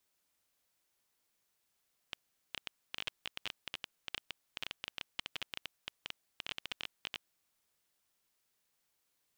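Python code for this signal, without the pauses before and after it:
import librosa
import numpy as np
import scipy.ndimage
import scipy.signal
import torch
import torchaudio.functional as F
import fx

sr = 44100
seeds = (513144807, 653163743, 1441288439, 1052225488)

y = fx.geiger_clicks(sr, seeds[0], length_s=5.11, per_s=13.0, level_db=-21.0)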